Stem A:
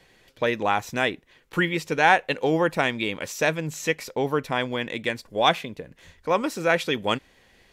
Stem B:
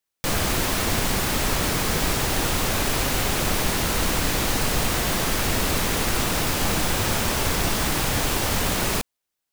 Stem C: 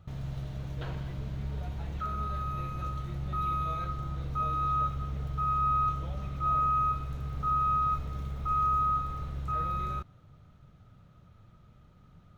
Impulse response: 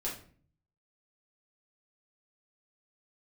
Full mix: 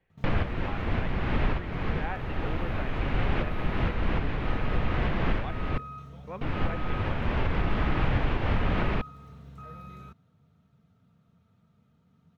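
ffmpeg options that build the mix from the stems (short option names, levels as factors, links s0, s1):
-filter_complex "[0:a]volume=0.112,asplit=2[s0][s1];[1:a]volume=1.12,asplit=3[s2][s3][s4];[s2]atrim=end=5.78,asetpts=PTS-STARTPTS,afade=t=out:st=5.776:d=0.004:c=hsin[s5];[s3]atrim=start=5.78:end=6.41,asetpts=PTS-STARTPTS,volume=0[s6];[s4]atrim=start=6.41,asetpts=PTS-STARTPTS,afade=t=in:d=0.004:c=hsin[s7];[s5][s6][s7]concat=n=3:v=0:a=1[s8];[2:a]highpass=f=96:w=0.5412,highpass=f=96:w=1.3066,aecho=1:1:4.4:0.57,adelay=100,volume=0.355[s9];[s1]apad=whole_len=420225[s10];[s8][s10]sidechaincompress=threshold=0.00355:ratio=6:attack=35:release=671[s11];[s0][s11]amix=inputs=2:normalize=0,lowpass=f=2700:w=0.5412,lowpass=f=2700:w=1.3066,alimiter=limit=0.126:level=0:latency=1:release=420,volume=1[s12];[s9][s12]amix=inputs=2:normalize=0,lowshelf=f=190:g=8.5,alimiter=limit=0.168:level=0:latency=1:release=295"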